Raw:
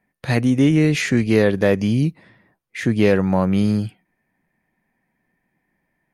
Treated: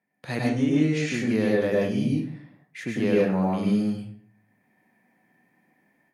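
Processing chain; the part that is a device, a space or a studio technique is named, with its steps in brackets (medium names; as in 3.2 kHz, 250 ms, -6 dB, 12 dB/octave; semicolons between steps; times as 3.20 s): far laptop microphone (reverberation RT60 0.50 s, pre-delay 96 ms, DRR -3 dB; high-pass 150 Hz 12 dB/octave; level rider gain up to 10 dB); 0.49–1.14 s: low-pass 8.6 kHz 24 dB/octave; trim -9 dB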